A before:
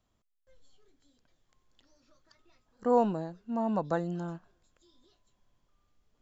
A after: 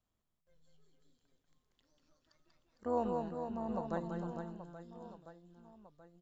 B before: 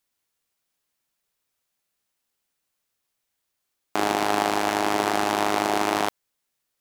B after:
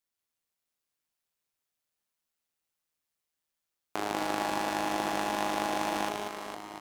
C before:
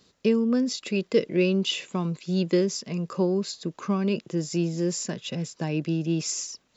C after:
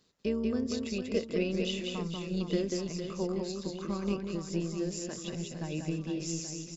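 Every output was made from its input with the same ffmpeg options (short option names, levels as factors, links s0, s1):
-af "aecho=1:1:190|456|828.4|1350|2080:0.631|0.398|0.251|0.158|0.1,tremolo=f=160:d=0.462,volume=0.422"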